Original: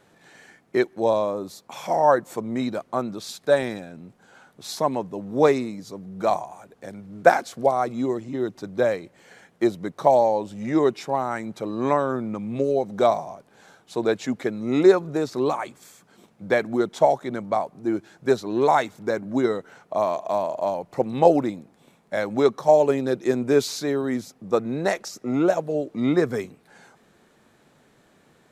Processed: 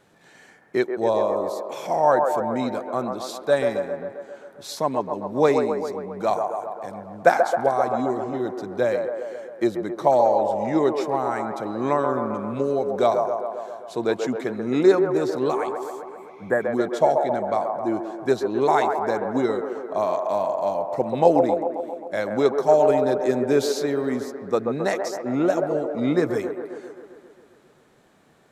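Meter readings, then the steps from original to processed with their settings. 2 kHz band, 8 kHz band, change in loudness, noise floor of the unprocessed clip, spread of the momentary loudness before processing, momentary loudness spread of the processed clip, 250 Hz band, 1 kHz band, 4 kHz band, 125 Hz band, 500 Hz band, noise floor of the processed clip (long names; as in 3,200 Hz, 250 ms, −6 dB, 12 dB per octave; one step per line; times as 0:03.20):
0.0 dB, can't be measured, +0.5 dB, −60 dBFS, 13 LU, 12 LU, −0.5 dB, +1.5 dB, −1.0 dB, −1.0 dB, +1.0 dB, −54 dBFS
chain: delay with a band-pass on its return 133 ms, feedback 67%, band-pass 730 Hz, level −4 dB
healed spectral selection 0:16.09–0:16.62, 2,000–6,800 Hz both
level −1 dB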